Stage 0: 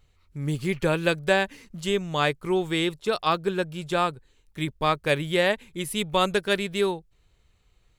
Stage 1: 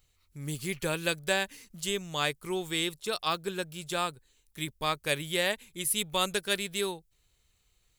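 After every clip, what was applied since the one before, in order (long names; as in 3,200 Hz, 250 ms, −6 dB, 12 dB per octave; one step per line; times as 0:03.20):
first-order pre-emphasis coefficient 0.8
level +5 dB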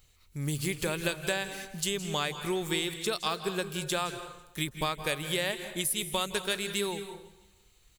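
downward compressor, threshold −34 dBFS, peak gain reduction 11 dB
repeating echo 166 ms, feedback 54%, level −23.5 dB
on a send at −9.5 dB: convolution reverb RT60 0.75 s, pre-delay 155 ms
on the sum: level +6.5 dB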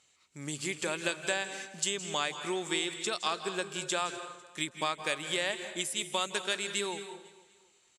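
loudspeaker in its box 280–8,300 Hz, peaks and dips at 450 Hz −5 dB, 4,200 Hz −3 dB, 7,500 Hz +5 dB
repeating echo 250 ms, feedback 47%, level −21.5 dB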